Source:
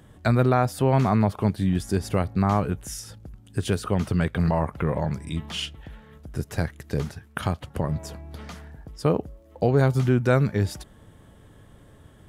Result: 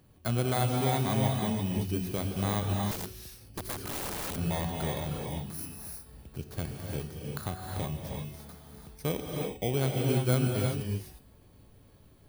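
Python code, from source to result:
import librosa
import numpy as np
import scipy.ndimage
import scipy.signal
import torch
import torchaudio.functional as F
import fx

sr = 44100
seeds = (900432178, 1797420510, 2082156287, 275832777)

y = fx.bit_reversed(x, sr, seeds[0], block=16)
y = fx.comb_fb(y, sr, f0_hz=370.0, decay_s=0.73, harmonics='all', damping=0.0, mix_pct=70)
y = fx.rev_gated(y, sr, seeds[1], gate_ms=380, shape='rising', drr_db=0.5)
y = fx.overflow_wrap(y, sr, gain_db=30.5, at=(2.91, 4.36))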